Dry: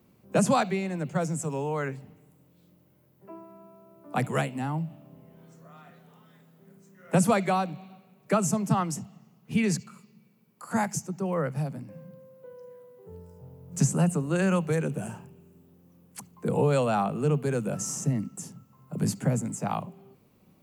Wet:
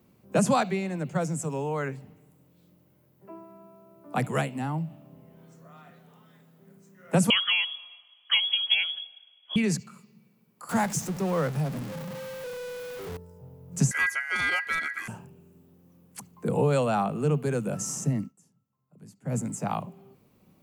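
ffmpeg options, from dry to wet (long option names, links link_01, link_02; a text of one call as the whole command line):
ffmpeg -i in.wav -filter_complex "[0:a]asettb=1/sr,asplit=3[link_01][link_02][link_03];[link_01]atrim=end=7.304[link_04];[link_02]atrim=start=7.3:end=9.56,asetpts=PTS-STARTPTS,afade=type=in:duration=0.004:curve=qsin,afade=type=out:start_time=2.256:duration=0.004:curve=qsin,lowpass=frequency=3000:width_type=q:width=0.5098,lowpass=frequency=3000:width_type=q:width=0.6013,lowpass=frequency=3000:width_type=q:width=0.9,lowpass=frequency=3000:width_type=q:width=2.563,afreqshift=-3500[link_05];[link_03]atrim=start=9.556[link_06];[link_04][link_05]acrossfade=duration=0.004:curve1=hsin:curve2=qsin[link_07];[link_07][link_06]acrossfade=duration=0.004:curve1=qsin:curve2=hsin,asettb=1/sr,asplit=3[link_08][link_09][link_10];[link_08]atrim=end=10.694[link_11];[link_09]atrim=start=10.69:end=13.17,asetpts=PTS-STARTPTS,afade=type=in:duration=0.004:curve=qsin,afade=type=out:start_time=2.476:duration=0.004:curve=qsin,aeval=exprs='val(0)+0.5*0.0211*sgn(val(0))':channel_layout=same[link_12];[link_10]atrim=start=13.166[link_13];[link_11][link_12]acrossfade=duration=0.004:curve1=hsin:curve2=qsin[link_14];[link_14][link_13]acrossfade=duration=0.004:curve1=qsin:curve2=hsin,asettb=1/sr,asplit=3[link_15][link_16][link_17];[link_15]atrim=end=13.914[link_18];[link_16]atrim=start=13.91:end=15.08,asetpts=PTS-STARTPTS,afade=type=in:duration=0.004:curve=qsin,afade=type=out:start_time=1.166:duration=0.004:curve=qsin,aeval=exprs='val(0)*sin(2*PI*1800*n/s)':channel_layout=same[link_19];[link_17]atrim=start=15.076[link_20];[link_18][link_19]acrossfade=duration=0.004:curve1=hsin:curve2=qsin[link_21];[link_21][link_20]acrossfade=duration=0.004:curve1=qsin:curve2=hsin,asplit=3[link_22][link_23][link_24];[link_22]atrim=end=18.33,asetpts=PTS-STARTPTS,afade=type=out:start_time=18.21:duration=0.12:silence=0.0749894[link_25];[link_23]atrim=start=18.33:end=19.24,asetpts=PTS-STARTPTS,volume=-22.5dB[link_26];[link_24]atrim=start=19.24,asetpts=PTS-STARTPTS,afade=type=in:duration=0.12:silence=0.0749894[link_27];[link_25][link_26][link_27]concat=n=3:v=0:a=1" out.wav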